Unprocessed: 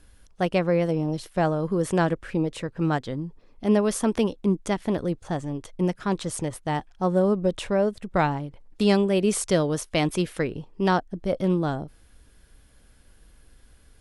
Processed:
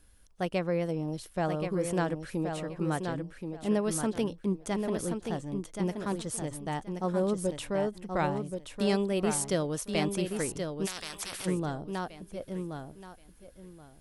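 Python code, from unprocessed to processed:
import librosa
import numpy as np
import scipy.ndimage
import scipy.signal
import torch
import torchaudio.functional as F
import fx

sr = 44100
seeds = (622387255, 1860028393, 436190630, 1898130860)

p1 = fx.high_shelf(x, sr, hz=9100.0, db=10.0)
p2 = p1 + fx.echo_feedback(p1, sr, ms=1077, feedback_pct=21, wet_db=-6.0, dry=0)
p3 = fx.spectral_comp(p2, sr, ratio=10.0, at=(10.85, 11.45), fade=0.02)
y = p3 * 10.0 ** (-7.5 / 20.0)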